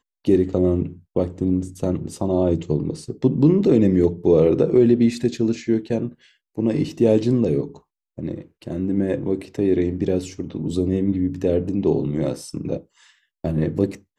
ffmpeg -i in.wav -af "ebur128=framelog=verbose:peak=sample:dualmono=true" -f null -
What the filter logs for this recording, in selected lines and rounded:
Integrated loudness:
  I:         -17.9 LUFS
  Threshold: -28.4 LUFS
Loudness range:
  LRA:         5.9 LU
  Threshold: -38.1 LUFS
  LRA low:   -21.0 LUFS
  LRA high:  -15.1 LUFS
Sample peak:
  Peak:       -5.0 dBFS